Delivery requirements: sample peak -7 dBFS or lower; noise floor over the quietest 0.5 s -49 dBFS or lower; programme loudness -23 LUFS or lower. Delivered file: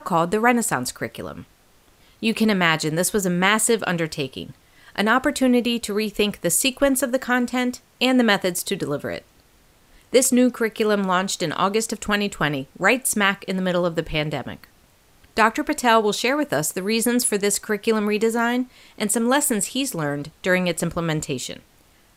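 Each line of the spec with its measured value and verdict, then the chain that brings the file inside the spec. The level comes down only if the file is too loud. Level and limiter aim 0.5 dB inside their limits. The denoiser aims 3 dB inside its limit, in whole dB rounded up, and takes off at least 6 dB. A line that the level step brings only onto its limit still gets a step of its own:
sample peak -3.5 dBFS: fail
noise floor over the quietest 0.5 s -56 dBFS: pass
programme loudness -21.0 LUFS: fail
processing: trim -2.5 dB; peak limiter -7.5 dBFS

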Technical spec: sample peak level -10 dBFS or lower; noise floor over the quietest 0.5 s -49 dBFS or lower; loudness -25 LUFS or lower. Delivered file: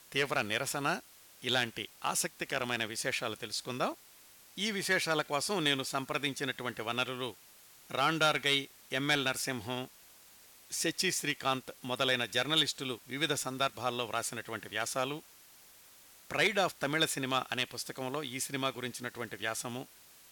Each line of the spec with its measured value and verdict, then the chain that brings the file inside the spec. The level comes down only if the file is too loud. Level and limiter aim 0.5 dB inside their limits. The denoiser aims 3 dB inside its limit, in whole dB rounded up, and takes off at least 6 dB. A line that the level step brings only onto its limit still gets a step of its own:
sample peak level -18.5 dBFS: pass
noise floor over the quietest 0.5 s -58 dBFS: pass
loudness -33.0 LUFS: pass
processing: none needed

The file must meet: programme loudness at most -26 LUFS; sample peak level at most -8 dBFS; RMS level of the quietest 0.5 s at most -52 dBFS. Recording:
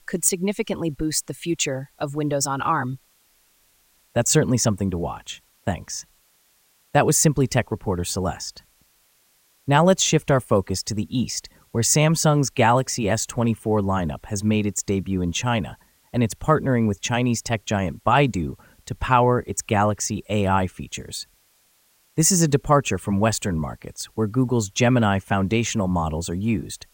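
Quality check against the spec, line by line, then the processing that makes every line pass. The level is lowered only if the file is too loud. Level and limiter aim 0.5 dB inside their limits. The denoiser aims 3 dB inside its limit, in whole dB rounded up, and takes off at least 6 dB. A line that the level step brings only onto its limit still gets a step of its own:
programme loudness -22.0 LUFS: fail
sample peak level -4.5 dBFS: fail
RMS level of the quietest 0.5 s -62 dBFS: pass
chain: trim -4.5 dB

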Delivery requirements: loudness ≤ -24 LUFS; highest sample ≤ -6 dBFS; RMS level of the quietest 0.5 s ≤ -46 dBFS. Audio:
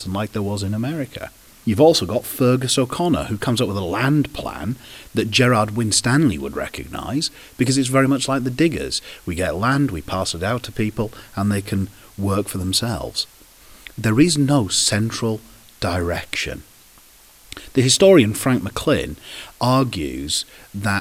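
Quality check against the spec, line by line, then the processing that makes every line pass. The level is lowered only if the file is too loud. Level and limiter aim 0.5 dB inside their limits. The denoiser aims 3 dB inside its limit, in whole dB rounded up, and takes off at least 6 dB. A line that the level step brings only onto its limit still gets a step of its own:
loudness -19.5 LUFS: fail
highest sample -2.5 dBFS: fail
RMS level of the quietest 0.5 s -48 dBFS: pass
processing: trim -5 dB

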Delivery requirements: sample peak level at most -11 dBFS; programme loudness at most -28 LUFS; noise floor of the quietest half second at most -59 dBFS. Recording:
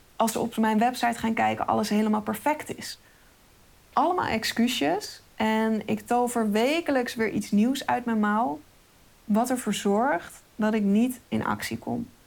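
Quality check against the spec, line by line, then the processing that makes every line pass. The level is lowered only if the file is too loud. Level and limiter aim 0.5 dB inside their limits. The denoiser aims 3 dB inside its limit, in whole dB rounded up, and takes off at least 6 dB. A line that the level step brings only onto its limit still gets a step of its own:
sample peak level -10.0 dBFS: fail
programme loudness -26.0 LUFS: fail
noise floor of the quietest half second -56 dBFS: fail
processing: noise reduction 6 dB, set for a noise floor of -56 dBFS; trim -2.5 dB

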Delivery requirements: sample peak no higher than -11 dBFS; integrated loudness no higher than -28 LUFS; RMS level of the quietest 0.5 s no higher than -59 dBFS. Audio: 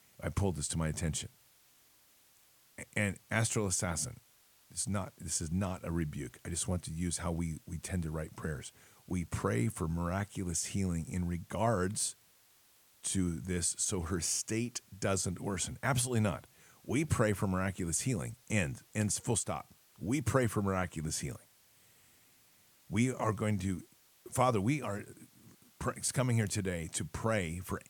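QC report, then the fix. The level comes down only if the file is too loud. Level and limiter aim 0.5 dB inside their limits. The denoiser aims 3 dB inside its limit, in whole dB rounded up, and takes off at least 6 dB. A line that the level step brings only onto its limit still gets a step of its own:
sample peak -14.5 dBFS: pass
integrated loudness -34.5 LUFS: pass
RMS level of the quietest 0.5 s -66 dBFS: pass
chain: none needed

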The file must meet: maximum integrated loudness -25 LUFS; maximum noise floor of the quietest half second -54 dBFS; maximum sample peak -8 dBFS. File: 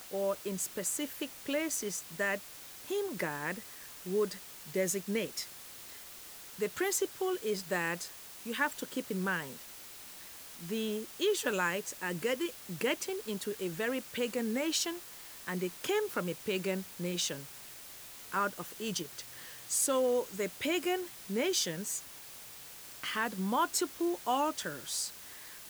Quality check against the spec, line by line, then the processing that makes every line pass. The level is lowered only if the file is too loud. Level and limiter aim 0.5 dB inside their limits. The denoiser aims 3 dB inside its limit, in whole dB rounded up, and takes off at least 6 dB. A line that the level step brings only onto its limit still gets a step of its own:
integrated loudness -34.5 LUFS: pass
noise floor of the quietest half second -49 dBFS: fail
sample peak -16.5 dBFS: pass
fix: noise reduction 8 dB, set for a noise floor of -49 dBFS

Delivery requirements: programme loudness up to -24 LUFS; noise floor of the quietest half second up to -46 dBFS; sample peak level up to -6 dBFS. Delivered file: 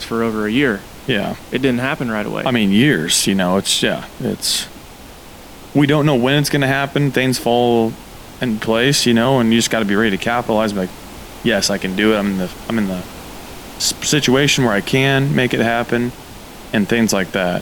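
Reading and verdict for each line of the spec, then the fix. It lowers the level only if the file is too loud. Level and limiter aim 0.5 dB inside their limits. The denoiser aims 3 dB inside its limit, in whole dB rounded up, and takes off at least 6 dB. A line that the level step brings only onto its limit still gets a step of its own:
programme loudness -16.5 LUFS: fail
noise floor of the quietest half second -37 dBFS: fail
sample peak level -2.5 dBFS: fail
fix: noise reduction 6 dB, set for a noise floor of -37 dBFS; trim -8 dB

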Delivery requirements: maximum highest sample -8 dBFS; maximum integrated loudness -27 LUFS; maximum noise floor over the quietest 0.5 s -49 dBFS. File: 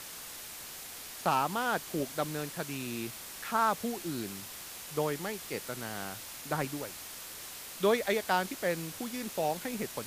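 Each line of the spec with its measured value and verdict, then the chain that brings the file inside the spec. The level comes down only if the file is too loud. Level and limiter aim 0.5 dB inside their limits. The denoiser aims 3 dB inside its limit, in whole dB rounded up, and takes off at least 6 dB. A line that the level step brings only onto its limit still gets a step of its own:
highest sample -14.0 dBFS: pass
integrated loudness -34.0 LUFS: pass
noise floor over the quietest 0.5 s -45 dBFS: fail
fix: noise reduction 7 dB, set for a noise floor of -45 dBFS

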